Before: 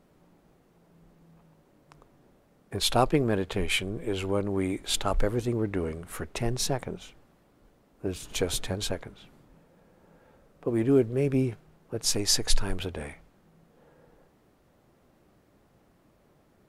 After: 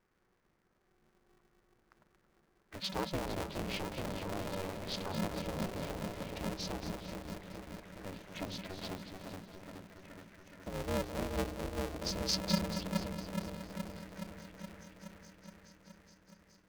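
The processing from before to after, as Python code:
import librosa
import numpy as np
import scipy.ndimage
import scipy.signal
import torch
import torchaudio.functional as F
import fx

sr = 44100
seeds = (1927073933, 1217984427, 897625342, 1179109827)

y = scipy.signal.sosfilt(scipy.signal.cheby1(6, 9, 6400.0, 'lowpass', fs=sr, output='sos'), x)
y = fx.echo_opening(y, sr, ms=421, hz=400, octaves=1, feedback_pct=70, wet_db=-3)
y = fx.env_phaser(y, sr, low_hz=560.0, high_hz=1700.0, full_db=-31.0)
y = fx.echo_feedback(y, sr, ms=228, feedback_pct=60, wet_db=-10)
y = y * np.sign(np.sin(2.0 * np.pi * 190.0 * np.arange(len(y)) / sr))
y = y * librosa.db_to_amplitude(-4.5)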